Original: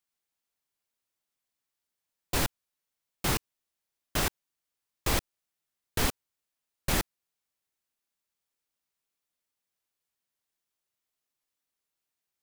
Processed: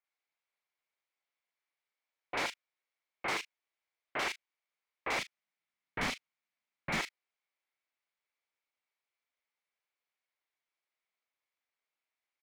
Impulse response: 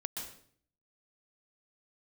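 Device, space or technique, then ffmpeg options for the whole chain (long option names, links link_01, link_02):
megaphone: -filter_complex "[0:a]highpass=490,lowpass=3400,equalizer=frequency=2200:width_type=o:width=0.32:gain=10.5,asoftclip=type=hard:threshold=-27.5dB,asplit=2[link_01][link_02];[link_02]adelay=37,volume=-13dB[link_03];[link_01][link_03]amix=inputs=2:normalize=0,asettb=1/sr,asplit=3[link_04][link_05][link_06];[link_04]atrim=end=5.184[link_07];[link_05]atrim=start=5.18:end=7,asetpts=PTS-STARTPTS,afade=type=in:duration=0.004:curve=qsin,afade=type=out:start_time=1.816:duration=0.004:curve=qsin,lowshelf=frequency=280:width_type=q:width=1.5:gain=11[link_08];[link_06]atrim=start=6.996[link_09];[link_07][link_08]acrossfade=duration=0.004:curve1=hsin:curve2=qsin[link_10];[link_10][link_09]acrossfade=duration=0.004:curve1=qsin:curve2=hsin,acrossover=split=2300[link_11][link_12];[link_12]adelay=40[link_13];[link_11][link_13]amix=inputs=2:normalize=0"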